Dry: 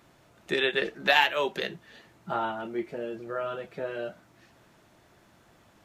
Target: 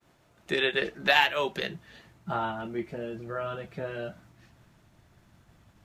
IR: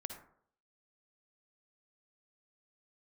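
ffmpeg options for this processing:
-af "agate=range=-33dB:threshold=-55dB:ratio=3:detection=peak,asubboost=boost=4:cutoff=190"

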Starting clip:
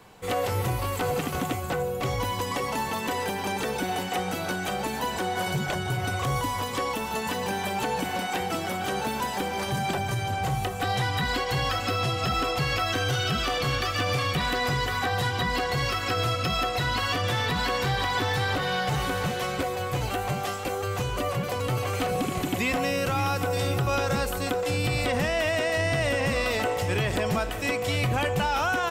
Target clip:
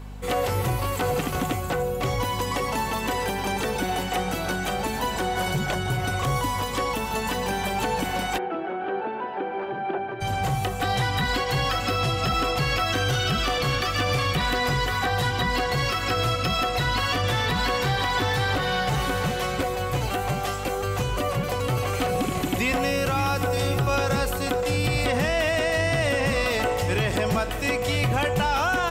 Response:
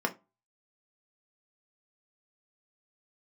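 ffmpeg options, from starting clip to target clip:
-filter_complex "[0:a]aeval=exprs='val(0)+0.0112*(sin(2*PI*50*n/s)+sin(2*PI*2*50*n/s)/2+sin(2*PI*3*50*n/s)/3+sin(2*PI*4*50*n/s)/4+sin(2*PI*5*50*n/s)/5)':c=same,acontrast=45,asplit=3[a][b][c];[a]afade=t=out:st=8.37:d=0.02[d];[b]highpass=360,equalizer=f=360:t=q:w=4:g=8,equalizer=f=550:t=q:w=4:g=-3,equalizer=f=1.1k:t=q:w=4:g=-7,equalizer=f=2k:t=q:w=4:g=-9,lowpass=f=2.1k:w=0.5412,lowpass=f=2.1k:w=1.3066,afade=t=in:st=8.37:d=0.02,afade=t=out:st=10.2:d=0.02[e];[c]afade=t=in:st=10.2:d=0.02[f];[d][e][f]amix=inputs=3:normalize=0,volume=-3.5dB"

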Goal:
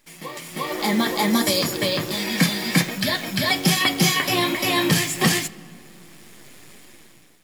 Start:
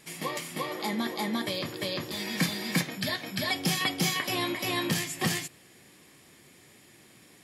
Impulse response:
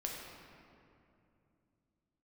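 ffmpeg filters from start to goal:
-filter_complex "[0:a]asettb=1/sr,asplit=3[a][b][c];[a]atrim=end=1.304[d];[b]atrim=start=1.3:end=1.74,asetpts=PTS-STARTPTS,afade=t=in:d=0.004:c=qsin,afade=t=out:st=0.436:d=0.004:c=qsin,highshelf=f=4.6k:t=q:w=1.5:g=8[e];[c]atrim=start=1.736[f];[d][e]acrossfade=d=0.004:c1=hsin:c2=qsin[g];[g][f]acrossfade=d=0.004:c1=qsin:c2=hsin,acrusher=bits=8:dc=4:mix=0:aa=0.000001,dynaudnorm=f=200:g=7:m=16dB,flanger=delay=2.9:depth=4.8:regen=-49:speed=1.3:shape=triangular,asplit=2[h][i];[1:a]atrim=start_sample=2205,asetrate=48510,aresample=44100[j];[i][j]afir=irnorm=-1:irlink=0,volume=-15.5dB[k];[h][k]amix=inputs=2:normalize=0"

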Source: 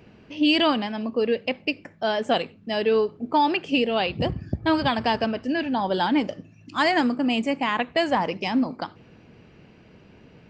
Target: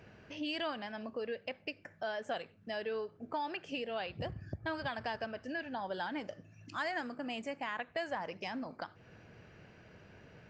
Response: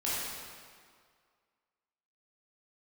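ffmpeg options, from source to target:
-af "equalizer=f=100:t=o:w=0.67:g=5,equalizer=f=250:t=o:w=0.67:g=-4,equalizer=f=630:t=o:w=0.67:g=5,equalizer=f=1.6k:t=o:w=0.67:g=9,equalizer=f=6.3k:t=o:w=0.67:g=6,acompressor=threshold=-37dB:ratio=2,volume=-7.5dB"

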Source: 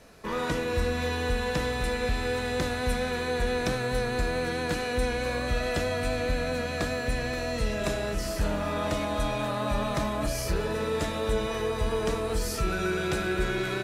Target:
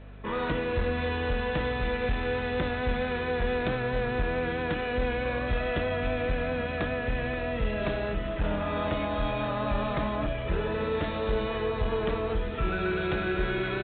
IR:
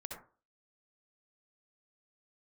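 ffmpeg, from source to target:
-af "aresample=8000,aeval=exprs='clip(val(0),-1,0.0668)':c=same,aresample=44100,aeval=exprs='val(0)+0.00631*(sin(2*PI*50*n/s)+sin(2*PI*2*50*n/s)/2+sin(2*PI*3*50*n/s)/3+sin(2*PI*4*50*n/s)/4+sin(2*PI*5*50*n/s)/5)':c=same"

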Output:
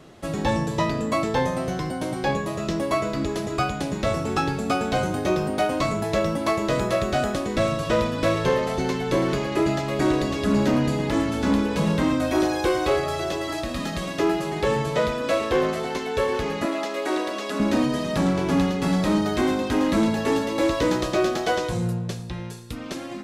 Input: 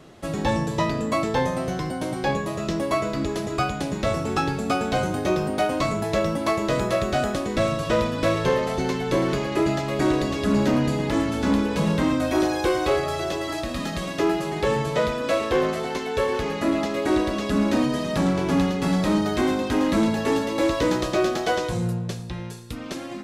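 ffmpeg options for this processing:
-filter_complex "[0:a]asettb=1/sr,asplit=3[a][b][c];[a]atrim=end=16.654[d];[b]atrim=start=16.65:end=17.6,asetpts=PTS-STARTPTS,afade=t=in:d=0.004:c=qsin,afade=t=out:st=0.946:d=0.004:c=qsin,highpass=410[e];[c]atrim=start=17.596[f];[d][e]acrossfade=d=0.004:c1=hsin:c2=qsin[g];[g][f]acrossfade=d=0.004:c1=qsin:c2=hsin"

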